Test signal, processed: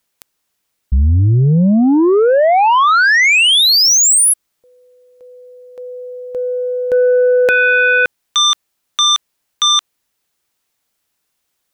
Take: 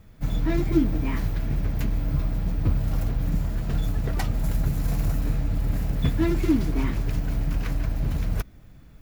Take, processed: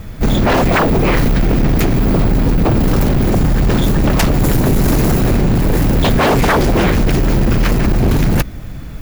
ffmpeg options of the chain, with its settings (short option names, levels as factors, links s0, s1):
-af "aeval=exprs='0.376*sin(PI/2*7.08*val(0)/0.376)':c=same"